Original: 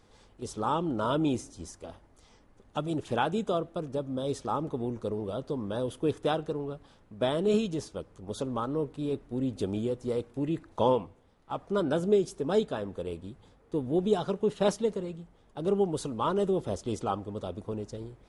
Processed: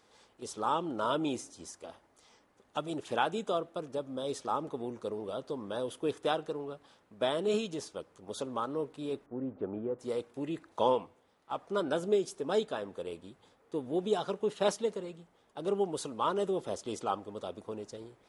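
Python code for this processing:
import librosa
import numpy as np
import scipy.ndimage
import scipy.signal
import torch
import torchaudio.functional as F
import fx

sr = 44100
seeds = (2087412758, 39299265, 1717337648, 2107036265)

y = fx.lowpass(x, sr, hz=1600.0, slope=24, at=(9.26, 9.99))
y = fx.highpass(y, sr, hz=490.0, slope=6)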